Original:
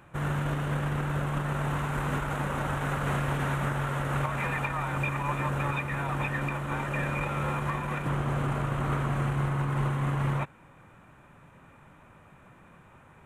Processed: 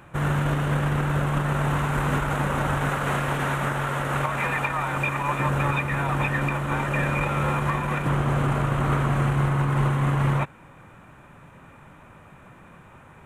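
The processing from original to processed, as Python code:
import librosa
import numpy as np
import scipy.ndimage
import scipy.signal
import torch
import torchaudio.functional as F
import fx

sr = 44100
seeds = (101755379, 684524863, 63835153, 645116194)

y = fx.low_shelf(x, sr, hz=200.0, db=-7.0, at=(2.89, 5.4))
y = F.gain(torch.from_numpy(y), 6.0).numpy()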